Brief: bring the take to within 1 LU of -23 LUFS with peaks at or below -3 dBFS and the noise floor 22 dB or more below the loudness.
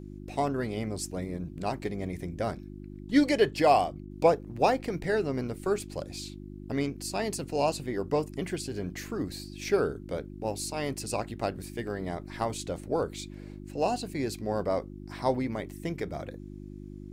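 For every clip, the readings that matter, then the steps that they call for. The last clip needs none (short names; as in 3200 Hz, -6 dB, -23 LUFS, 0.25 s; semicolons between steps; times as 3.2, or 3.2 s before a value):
hum 50 Hz; harmonics up to 350 Hz; hum level -40 dBFS; loudness -30.5 LUFS; peak -9.5 dBFS; loudness target -23.0 LUFS
-> de-hum 50 Hz, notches 7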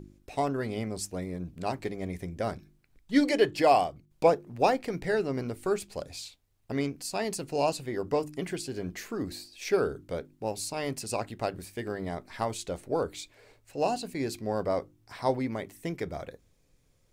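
hum none; loudness -31.0 LUFS; peak -9.5 dBFS; loudness target -23.0 LUFS
-> gain +8 dB; limiter -3 dBFS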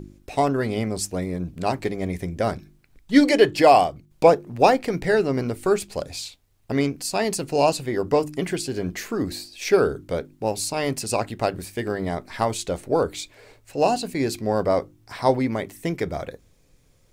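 loudness -23.0 LUFS; peak -3.0 dBFS; noise floor -59 dBFS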